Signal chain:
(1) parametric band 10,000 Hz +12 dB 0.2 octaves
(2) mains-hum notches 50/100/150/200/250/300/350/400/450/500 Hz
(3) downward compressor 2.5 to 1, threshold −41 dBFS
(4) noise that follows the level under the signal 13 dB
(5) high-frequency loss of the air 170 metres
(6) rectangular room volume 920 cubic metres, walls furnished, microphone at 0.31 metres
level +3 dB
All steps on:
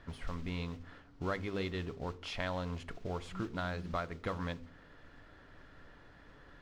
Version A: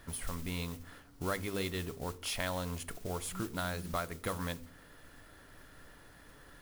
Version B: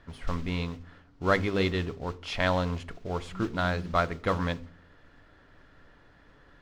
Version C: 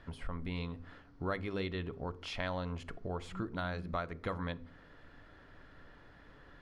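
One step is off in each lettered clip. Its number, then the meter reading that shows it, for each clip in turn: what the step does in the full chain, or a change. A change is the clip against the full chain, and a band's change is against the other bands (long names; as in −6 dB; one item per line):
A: 5, 8 kHz band +16.5 dB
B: 3, average gain reduction 5.0 dB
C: 4, 8 kHz band −2.5 dB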